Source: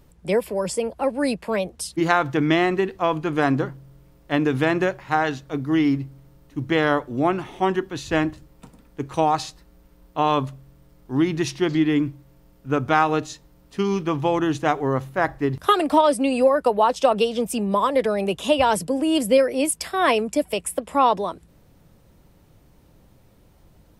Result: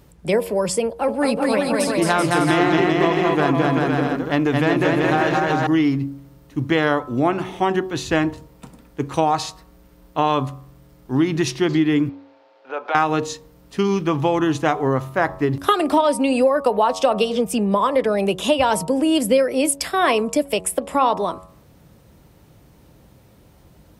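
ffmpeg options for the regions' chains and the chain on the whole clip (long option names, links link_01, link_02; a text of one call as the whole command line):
ffmpeg -i in.wav -filter_complex "[0:a]asettb=1/sr,asplit=3[link_01][link_02][link_03];[link_01]atrim=end=0.864[link_04];[link_02]atrim=start=0.86:end=5.67,asetpts=PTS-STARTPTS,afade=type=in:duration=0.004:curve=qsin,afade=type=out:start_time=4.806:duration=0.004:curve=qsin,aeval=exprs='(tanh(2.51*val(0)+0.4)-tanh(0.4))/2.51':channel_layout=same,aecho=1:1:220|385|508.8|601.6|671.2:0.794|0.631|0.501|0.398|0.316,atrim=end_sample=212121[link_05];[link_03]atrim=start=5.666[link_06];[link_04][link_05]acrossfade=duration=0.004:curve1=hsin:curve2=qsin[link_07];[link_07][link_06]acrossfade=duration=0.004:curve1=qsin:curve2=hsin,asettb=1/sr,asplit=3[link_08][link_09][link_10];[link_08]atrim=end=12.094[link_11];[link_09]atrim=start=12.09:end=12.95,asetpts=PTS-STARTPTS,afade=type=in:duration=0.004:curve=qsin,afade=type=out:start_time=0.856:duration=0.004:curve=qsin,acompressor=threshold=-26dB:ratio=12:attack=3.2:release=140:knee=1:detection=peak,highpass=frequency=440:width=0.5412,highpass=frequency=440:width=1.3066,equalizer=frequency=550:width_type=q:width=4:gain=6,equalizer=frequency=840:width_type=q:width=4:gain=10,equalizer=frequency=1500:width_type=q:width=4:gain=4,equalizer=frequency=2400:width_type=q:width=4:gain=4,equalizer=frequency=4100:width_type=q:width=4:gain=3,lowpass=frequency=4600:width=0.5412,lowpass=frequency=4600:width=1.3066[link_12];[link_10]atrim=start=12.946[link_13];[link_11][link_12]acrossfade=duration=0.004:curve1=hsin:curve2=qsin[link_14];[link_14][link_13]acrossfade=duration=0.004:curve1=qsin:curve2=hsin,asettb=1/sr,asplit=3[link_15][link_16][link_17];[link_15]atrim=end=17.354[link_18];[link_16]atrim=start=17.35:end=18.13,asetpts=PTS-STARTPTS,afade=type=in:duration=0.004:curve=qsin,afade=type=out:start_time=0.776:duration=0.004:curve=qsin,highshelf=frequency=4600:gain=-4.5,bandreject=frequency=4000:width=28[link_19];[link_17]atrim=start=18.126[link_20];[link_18][link_19]acrossfade=duration=0.004:curve1=hsin:curve2=qsin[link_21];[link_21][link_20]acrossfade=duration=0.004:curve1=qsin:curve2=hsin,highpass=51,bandreject=frequency=93.09:width_type=h:width=4,bandreject=frequency=186.18:width_type=h:width=4,bandreject=frequency=279.27:width_type=h:width=4,bandreject=frequency=372.36:width_type=h:width=4,bandreject=frequency=465.45:width_type=h:width=4,bandreject=frequency=558.54:width_type=h:width=4,bandreject=frequency=651.63:width_type=h:width=4,bandreject=frequency=744.72:width_type=h:width=4,bandreject=frequency=837.81:width_type=h:width=4,bandreject=frequency=930.9:width_type=h:width=4,bandreject=frequency=1023.99:width_type=h:width=4,bandreject=frequency=1117.08:width_type=h:width=4,bandreject=frequency=1210.17:width_type=h:width=4,bandreject=frequency=1303.26:width_type=h:width=4,acompressor=threshold=-22dB:ratio=2,volume=5.5dB" out.wav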